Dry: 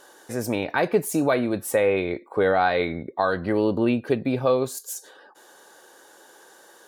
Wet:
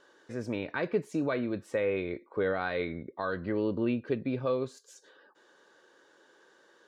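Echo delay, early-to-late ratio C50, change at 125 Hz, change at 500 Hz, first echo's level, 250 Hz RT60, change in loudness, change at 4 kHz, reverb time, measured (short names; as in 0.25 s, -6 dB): none, none, -7.0 dB, -9.0 dB, none, none, -8.5 dB, -11.0 dB, none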